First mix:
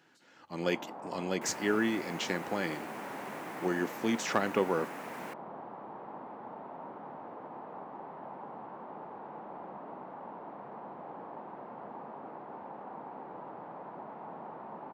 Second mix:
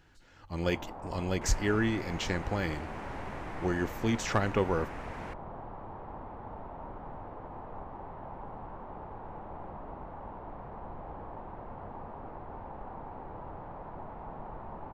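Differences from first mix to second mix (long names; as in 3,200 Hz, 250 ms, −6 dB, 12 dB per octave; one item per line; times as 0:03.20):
second sound: add high-frequency loss of the air 76 metres
master: remove high-pass filter 180 Hz 24 dB per octave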